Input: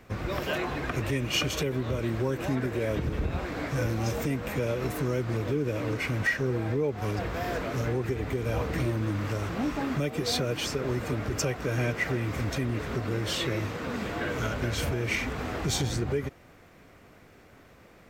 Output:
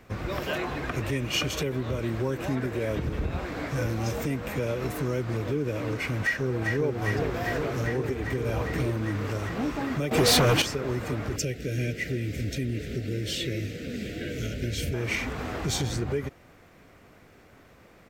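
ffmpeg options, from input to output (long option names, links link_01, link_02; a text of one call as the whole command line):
ffmpeg -i in.wav -filter_complex "[0:a]asplit=2[link_01][link_02];[link_02]afade=type=in:start_time=6.21:duration=0.01,afade=type=out:start_time=6.94:duration=0.01,aecho=0:1:400|800|1200|1600|2000|2400|2800|3200|3600|4000|4400|4800:0.595662|0.47653|0.381224|0.304979|0.243983|0.195187|0.156149|0.124919|0.0999355|0.0799484|0.0639587|0.051167[link_03];[link_01][link_03]amix=inputs=2:normalize=0,asettb=1/sr,asplit=3[link_04][link_05][link_06];[link_04]atrim=end=10.114[link_07];[link_05]atrim=start=10.11:end=10.62,asetpts=PTS-STARTPTS,afade=type=in:duration=0.004:curve=qsin,afade=type=out:start_time=0.506:duration=0.004:curve=qsin,aeval=exprs='0.158*sin(PI/2*2.82*val(0)/0.158)':channel_layout=same[link_08];[link_06]atrim=start=10.616[link_09];[link_07][link_08]acrossfade=duration=0.004:curve1=hsin:curve2=qsin[link_10];[link_10][link_09]acrossfade=duration=0.004:curve1=qsin:curve2=hsin,asettb=1/sr,asplit=3[link_11][link_12][link_13];[link_11]atrim=end=11.364[link_14];[link_12]atrim=start=11.36:end=14.94,asetpts=PTS-STARTPTS,afade=type=in:duration=0.004:curve=qsin,afade=type=out:start_time=3.576:duration=0.004:curve=qsin,asuperstop=centerf=990:order=4:qfactor=0.65[link_15];[link_13]atrim=start=14.936[link_16];[link_14][link_15]acrossfade=duration=0.004:curve1=hsin:curve2=qsin[link_17];[link_17][link_16]acrossfade=duration=0.004:curve1=qsin:curve2=hsin" out.wav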